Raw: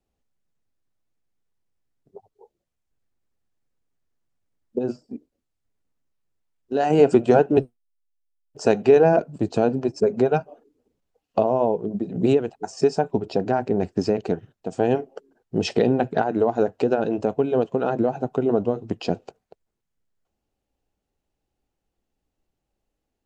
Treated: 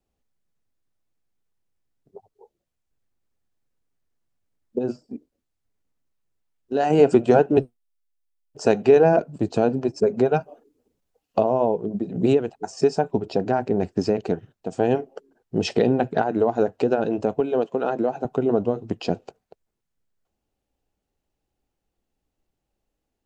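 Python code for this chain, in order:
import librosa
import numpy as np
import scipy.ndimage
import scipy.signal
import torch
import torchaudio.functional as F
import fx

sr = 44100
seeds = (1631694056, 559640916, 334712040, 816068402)

y = fx.high_shelf(x, sr, hz=6600.0, db=6.0, at=(10.4, 11.41))
y = fx.bessel_highpass(y, sr, hz=250.0, order=2, at=(17.4, 18.25))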